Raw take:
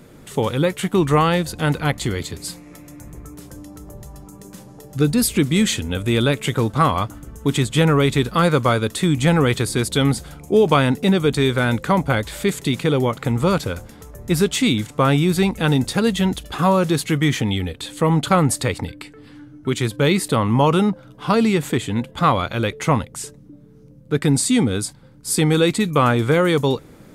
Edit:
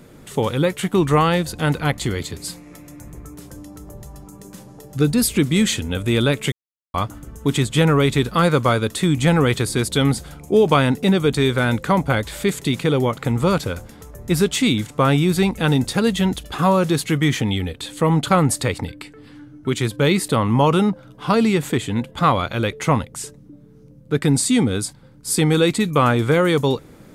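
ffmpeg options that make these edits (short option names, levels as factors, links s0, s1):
-filter_complex "[0:a]asplit=3[s0][s1][s2];[s0]atrim=end=6.52,asetpts=PTS-STARTPTS,afade=t=out:st=6.516:d=0.004:c=hsin[s3];[s1]atrim=start=6.52:end=6.94,asetpts=PTS-STARTPTS,volume=0[s4];[s2]atrim=start=6.94,asetpts=PTS-STARTPTS,afade=t=in:d=0.004:c=hsin[s5];[s3][s4][s5]concat=n=3:v=0:a=1"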